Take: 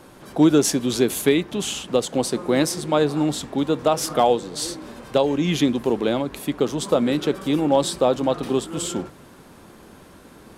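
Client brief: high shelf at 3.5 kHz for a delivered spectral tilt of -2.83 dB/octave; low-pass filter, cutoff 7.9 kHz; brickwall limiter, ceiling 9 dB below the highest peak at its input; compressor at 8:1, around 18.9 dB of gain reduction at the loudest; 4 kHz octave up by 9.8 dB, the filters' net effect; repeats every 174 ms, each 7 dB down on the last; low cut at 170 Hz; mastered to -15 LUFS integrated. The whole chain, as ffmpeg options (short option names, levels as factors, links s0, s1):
-af "highpass=170,lowpass=7900,highshelf=f=3500:g=8,equalizer=f=4000:t=o:g=7,acompressor=threshold=0.0251:ratio=8,alimiter=level_in=1.19:limit=0.0631:level=0:latency=1,volume=0.841,aecho=1:1:174|348|522|696|870:0.447|0.201|0.0905|0.0407|0.0183,volume=10.6"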